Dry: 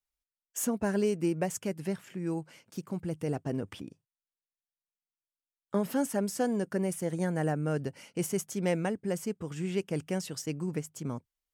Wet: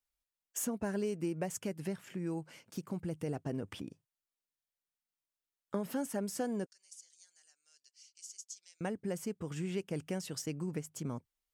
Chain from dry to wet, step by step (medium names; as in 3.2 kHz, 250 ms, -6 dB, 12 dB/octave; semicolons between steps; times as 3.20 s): compression 2:1, threshold -37 dBFS, peak gain reduction 8 dB; 6.66–8.81 s: Butterworth band-pass 5.7 kHz, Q 1.7